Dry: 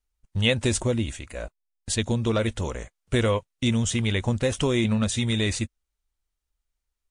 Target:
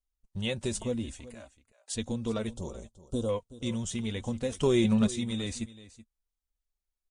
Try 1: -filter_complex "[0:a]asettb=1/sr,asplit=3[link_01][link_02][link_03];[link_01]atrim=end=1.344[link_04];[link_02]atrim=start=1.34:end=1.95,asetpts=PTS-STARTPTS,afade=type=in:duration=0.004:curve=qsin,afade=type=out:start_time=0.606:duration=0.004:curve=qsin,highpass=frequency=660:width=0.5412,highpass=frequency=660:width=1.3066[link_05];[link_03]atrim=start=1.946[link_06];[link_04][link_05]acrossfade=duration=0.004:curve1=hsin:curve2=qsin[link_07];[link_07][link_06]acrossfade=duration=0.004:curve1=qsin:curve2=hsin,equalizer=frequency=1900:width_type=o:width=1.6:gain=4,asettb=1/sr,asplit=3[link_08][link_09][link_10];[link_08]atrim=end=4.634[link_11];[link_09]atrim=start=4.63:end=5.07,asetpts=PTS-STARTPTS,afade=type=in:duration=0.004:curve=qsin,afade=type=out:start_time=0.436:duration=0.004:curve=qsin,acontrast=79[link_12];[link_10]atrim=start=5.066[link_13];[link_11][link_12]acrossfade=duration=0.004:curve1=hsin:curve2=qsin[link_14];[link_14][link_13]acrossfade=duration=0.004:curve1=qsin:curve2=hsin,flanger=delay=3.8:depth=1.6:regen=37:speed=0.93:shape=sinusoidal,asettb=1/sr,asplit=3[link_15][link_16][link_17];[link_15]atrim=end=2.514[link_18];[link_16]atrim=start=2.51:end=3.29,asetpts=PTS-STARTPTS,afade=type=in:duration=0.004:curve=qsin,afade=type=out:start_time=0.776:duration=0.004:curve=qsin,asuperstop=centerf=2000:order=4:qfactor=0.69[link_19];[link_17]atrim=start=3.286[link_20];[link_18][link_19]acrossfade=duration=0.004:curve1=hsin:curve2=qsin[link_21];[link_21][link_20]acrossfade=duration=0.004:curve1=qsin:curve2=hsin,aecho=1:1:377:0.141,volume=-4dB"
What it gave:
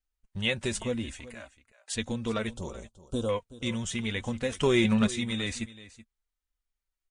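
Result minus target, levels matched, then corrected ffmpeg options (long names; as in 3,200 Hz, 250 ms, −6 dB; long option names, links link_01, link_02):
2,000 Hz band +7.5 dB
-filter_complex "[0:a]asettb=1/sr,asplit=3[link_01][link_02][link_03];[link_01]atrim=end=1.344[link_04];[link_02]atrim=start=1.34:end=1.95,asetpts=PTS-STARTPTS,afade=type=in:duration=0.004:curve=qsin,afade=type=out:start_time=0.606:duration=0.004:curve=qsin,highpass=frequency=660:width=0.5412,highpass=frequency=660:width=1.3066[link_05];[link_03]atrim=start=1.946[link_06];[link_04][link_05]acrossfade=duration=0.004:curve1=hsin:curve2=qsin[link_07];[link_07][link_06]acrossfade=duration=0.004:curve1=qsin:curve2=hsin,equalizer=frequency=1900:width_type=o:width=1.6:gain=-6,asettb=1/sr,asplit=3[link_08][link_09][link_10];[link_08]atrim=end=4.634[link_11];[link_09]atrim=start=4.63:end=5.07,asetpts=PTS-STARTPTS,afade=type=in:duration=0.004:curve=qsin,afade=type=out:start_time=0.436:duration=0.004:curve=qsin,acontrast=79[link_12];[link_10]atrim=start=5.066[link_13];[link_11][link_12]acrossfade=duration=0.004:curve1=hsin:curve2=qsin[link_14];[link_14][link_13]acrossfade=duration=0.004:curve1=qsin:curve2=hsin,flanger=delay=3.8:depth=1.6:regen=37:speed=0.93:shape=sinusoidal,asettb=1/sr,asplit=3[link_15][link_16][link_17];[link_15]atrim=end=2.514[link_18];[link_16]atrim=start=2.51:end=3.29,asetpts=PTS-STARTPTS,afade=type=in:duration=0.004:curve=qsin,afade=type=out:start_time=0.776:duration=0.004:curve=qsin,asuperstop=centerf=2000:order=4:qfactor=0.69[link_19];[link_17]atrim=start=3.286[link_20];[link_18][link_19]acrossfade=duration=0.004:curve1=hsin:curve2=qsin[link_21];[link_21][link_20]acrossfade=duration=0.004:curve1=qsin:curve2=hsin,aecho=1:1:377:0.141,volume=-4dB"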